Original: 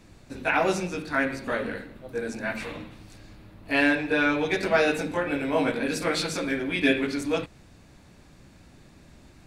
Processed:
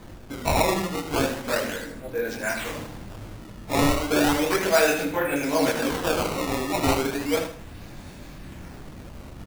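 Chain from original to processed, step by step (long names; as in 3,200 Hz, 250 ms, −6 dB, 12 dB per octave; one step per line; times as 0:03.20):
multi-voice chorus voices 4, 1.1 Hz, delay 24 ms, depth 4.1 ms
sample-and-hold swept by an LFO 16×, swing 160% 0.34 Hz
reversed playback
upward compression, threshold −43 dBFS
reversed playback
repeating echo 78 ms, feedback 27%, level −10 dB
in parallel at −2 dB: downward compressor, threshold −41 dBFS, peak gain reduction 19.5 dB
on the sum: dynamic equaliser 190 Hz, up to −4 dB, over −42 dBFS, Q 1
level +4.5 dB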